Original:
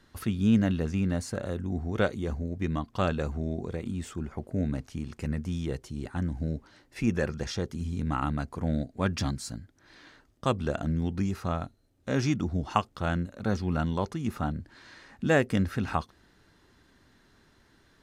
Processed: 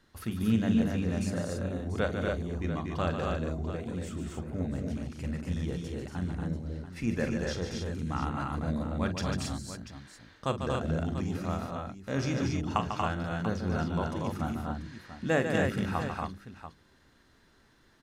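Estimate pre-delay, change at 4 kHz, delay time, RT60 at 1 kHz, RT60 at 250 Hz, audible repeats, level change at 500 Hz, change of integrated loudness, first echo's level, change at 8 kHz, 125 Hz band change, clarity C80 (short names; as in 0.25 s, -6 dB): none, -1.0 dB, 44 ms, none, none, 5, -1.0 dB, -2.0 dB, -11.5 dB, -1.0 dB, -2.0 dB, none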